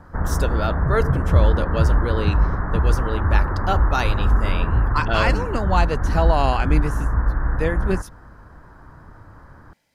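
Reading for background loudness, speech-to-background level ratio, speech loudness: -22.0 LUFS, -4.0 dB, -26.0 LUFS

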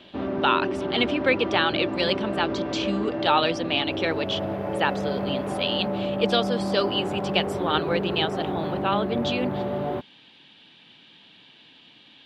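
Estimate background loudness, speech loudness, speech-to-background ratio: -29.0 LUFS, -26.5 LUFS, 2.5 dB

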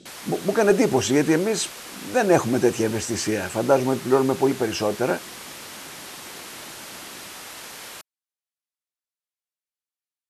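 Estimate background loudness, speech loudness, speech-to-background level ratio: -36.5 LUFS, -22.0 LUFS, 14.5 dB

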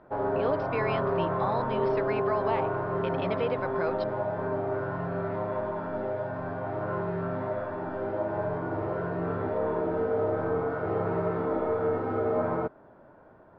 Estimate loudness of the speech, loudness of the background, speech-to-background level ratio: -34.0 LUFS, -30.0 LUFS, -4.0 dB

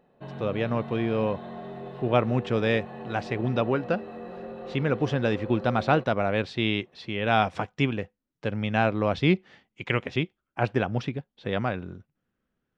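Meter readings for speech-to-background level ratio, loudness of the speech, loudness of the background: 12.0 dB, -27.5 LUFS, -39.5 LUFS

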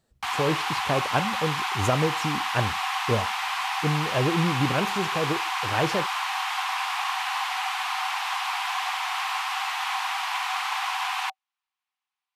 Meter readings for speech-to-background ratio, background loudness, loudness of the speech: -1.0 dB, -27.5 LUFS, -28.5 LUFS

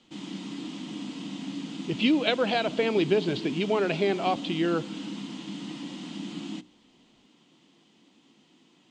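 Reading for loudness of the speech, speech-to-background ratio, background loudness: -26.5 LUFS, 11.0 dB, -37.5 LUFS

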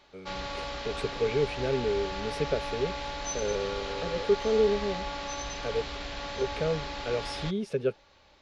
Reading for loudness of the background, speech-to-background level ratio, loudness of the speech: -36.0 LUFS, 4.5 dB, -31.5 LUFS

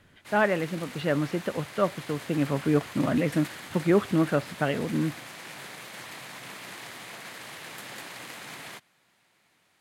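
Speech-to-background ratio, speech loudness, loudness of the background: 13.5 dB, -27.5 LUFS, -41.0 LUFS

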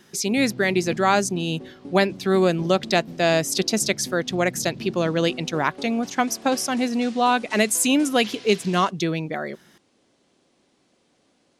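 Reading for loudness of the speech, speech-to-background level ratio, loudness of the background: -22.0 LUFS, 17.5 dB, -39.5 LUFS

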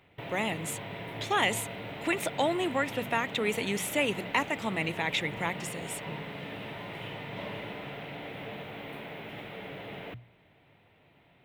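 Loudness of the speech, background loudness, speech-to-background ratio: -31.0 LUFS, -40.0 LUFS, 9.0 dB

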